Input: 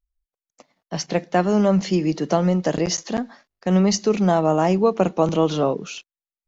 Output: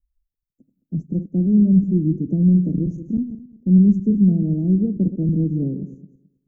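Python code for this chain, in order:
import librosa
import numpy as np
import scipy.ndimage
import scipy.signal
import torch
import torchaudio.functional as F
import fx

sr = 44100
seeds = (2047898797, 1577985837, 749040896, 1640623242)

y = fx.reverse_delay_fb(x, sr, ms=108, feedback_pct=43, wet_db=-11.0)
y = scipy.signal.sosfilt(scipy.signal.cheby2(4, 80, [1200.0, 4000.0], 'bandstop', fs=sr, output='sos'), y)
y = fx.low_shelf(y, sr, hz=490.0, db=6.5)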